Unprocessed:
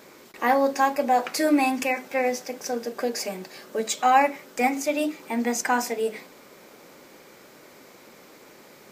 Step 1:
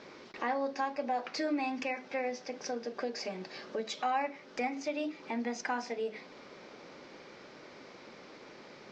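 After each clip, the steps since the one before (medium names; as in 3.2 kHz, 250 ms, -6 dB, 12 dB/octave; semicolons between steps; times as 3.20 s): steep low-pass 5.6 kHz 36 dB/octave; compression 2:1, threshold -37 dBFS, peak gain reduction 13 dB; trim -1.5 dB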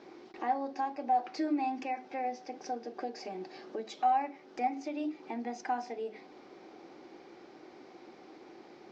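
small resonant body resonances 340/750 Hz, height 14 dB, ringing for 35 ms; trim -7.5 dB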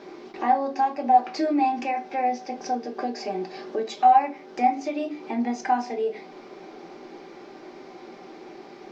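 reverberation RT60 0.25 s, pre-delay 5 ms, DRR 4.5 dB; trim +8 dB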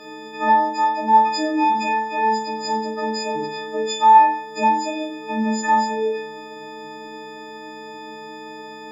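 partials quantised in pitch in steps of 6 st; flutter echo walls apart 7.8 m, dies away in 0.45 s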